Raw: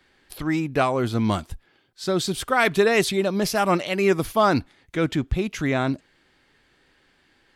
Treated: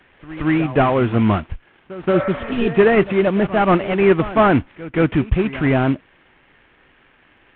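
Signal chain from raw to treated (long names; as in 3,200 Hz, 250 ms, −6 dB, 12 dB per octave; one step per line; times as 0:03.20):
variable-slope delta modulation 16 kbit/s
echo ahead of the sound 176 ms −16 dB
healed spectral selection 0:02.16–0:02.67, 490–2,400 Hz both
level +7 dB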